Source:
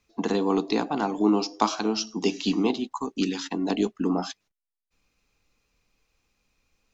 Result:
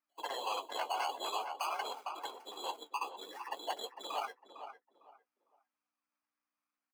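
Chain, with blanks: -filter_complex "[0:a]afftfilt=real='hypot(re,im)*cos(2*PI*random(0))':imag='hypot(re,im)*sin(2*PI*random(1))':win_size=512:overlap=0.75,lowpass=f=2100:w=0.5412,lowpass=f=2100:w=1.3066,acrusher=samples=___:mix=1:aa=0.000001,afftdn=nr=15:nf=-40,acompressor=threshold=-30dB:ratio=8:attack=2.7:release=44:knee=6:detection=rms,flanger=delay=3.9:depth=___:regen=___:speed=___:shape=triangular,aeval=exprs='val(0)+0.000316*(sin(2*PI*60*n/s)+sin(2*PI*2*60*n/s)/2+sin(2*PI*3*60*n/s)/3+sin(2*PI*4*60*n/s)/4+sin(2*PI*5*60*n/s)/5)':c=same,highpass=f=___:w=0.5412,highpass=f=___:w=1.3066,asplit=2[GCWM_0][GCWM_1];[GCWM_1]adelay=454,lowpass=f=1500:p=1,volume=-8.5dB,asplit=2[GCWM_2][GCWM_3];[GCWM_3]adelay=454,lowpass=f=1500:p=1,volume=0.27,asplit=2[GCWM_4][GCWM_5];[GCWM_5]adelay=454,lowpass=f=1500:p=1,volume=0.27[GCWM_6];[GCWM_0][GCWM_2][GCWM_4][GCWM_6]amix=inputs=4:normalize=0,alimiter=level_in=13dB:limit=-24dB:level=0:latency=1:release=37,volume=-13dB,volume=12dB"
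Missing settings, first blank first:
12, 9.7, 40, 0.51, 730, 730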